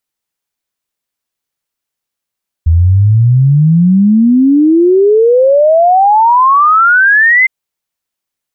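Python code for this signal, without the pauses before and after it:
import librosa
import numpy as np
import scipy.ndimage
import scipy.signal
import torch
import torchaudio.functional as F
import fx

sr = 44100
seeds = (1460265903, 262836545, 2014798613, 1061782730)

y = fx.ess(sr, length_s=4.81, from_hz=79.0, to_hz=2100.0, level_db=-4.0)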